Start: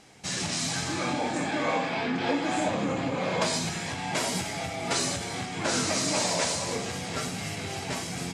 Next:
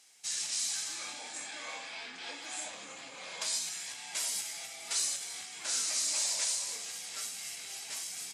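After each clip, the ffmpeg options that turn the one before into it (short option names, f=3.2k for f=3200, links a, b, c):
-af "aderivative"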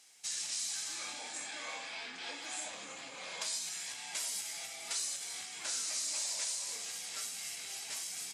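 -af "acompressor=threshold=-37dB:ratio=2"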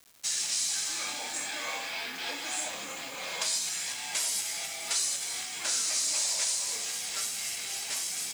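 -af "acrusher=bits=8:mix=0:aa=0.000001,volume=7.5dB"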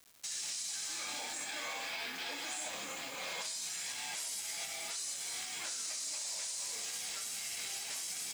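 -af "alimiter=level_in=3dB:limit=-24dB:level=0:latency=1:release=60,volume=-3dB,volume=-3.5dB"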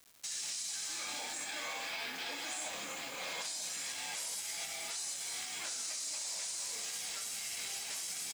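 -filter_complex "[0:a]asplit=2[a][b];[b]adelay=932.9,volume=-11dB,highshelf=f=4k:g=-21[c];[a][c]amix=inputs=2:normalize=0"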